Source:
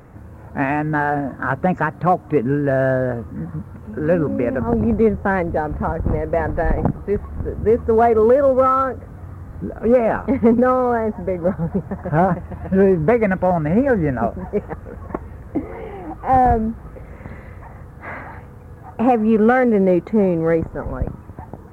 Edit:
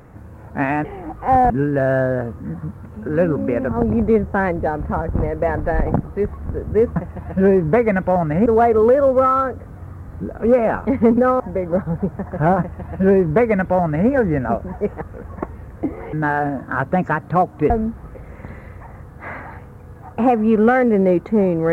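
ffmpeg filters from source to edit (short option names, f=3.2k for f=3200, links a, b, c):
-filter_complex "[0:a]asplit=8[a][b][c][d][e][f][g][h];[a]atrim=end=0.842[i];[b]atrim=start=15.848:end=16.512[j];[c]atrim=start=2.408:end=7.872[k];[d]atrim=start=12.308:end=13.812[l];[e]atrim=start=7.868:end=10.812[m];[f]atrim=start=11.118:end=15.852[n];[g]atrim=start=0.838:end=2.412[o];[h]atrim=start=16.508[p];[i][j]acrossfade=d=0.004:c1=hsin:c2=hsin[q];[q][k]acrossfade=d=0.004:c1=hsin:c2=hsin[r];[r][l]acrossfade=d=0.004:c1=hsin:c2=hsin[s];[s][m]acrossfade=d=0.004:c1=hsin:c2=hsin[t];[t][n]acrossfade=d=0.004:c1=hsin:c2=hsin[u];[u][o]acrossfade=d=0.004:c1=hsin:c2=hsin[v];[v][p]acrossfade=d=0.004:c1=hsin:c2=hsin"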